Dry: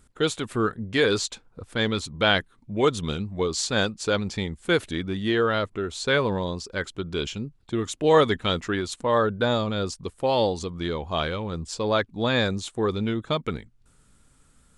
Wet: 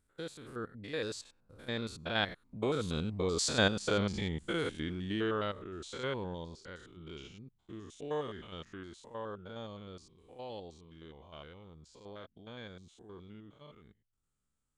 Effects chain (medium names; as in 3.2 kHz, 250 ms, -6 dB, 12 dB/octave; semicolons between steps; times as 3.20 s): spectrogram pixelated in time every 100 ms; Doppler pass-by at 3.70 s, 18 m/s, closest 14 m; trim -2.5 dB